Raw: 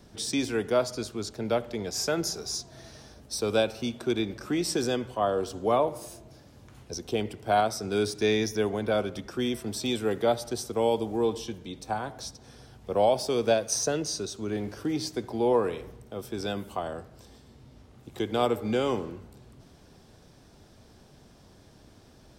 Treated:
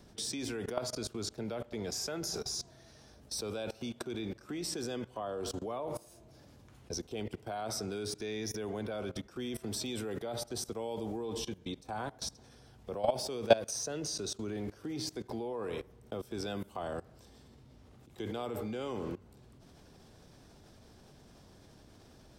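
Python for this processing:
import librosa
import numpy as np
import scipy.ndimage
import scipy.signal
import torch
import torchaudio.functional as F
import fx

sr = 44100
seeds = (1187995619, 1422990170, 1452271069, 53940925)

y = fx.level_steps(x, sr, step_db=20)
y = y * librosa.db_to_amplitude(2.5)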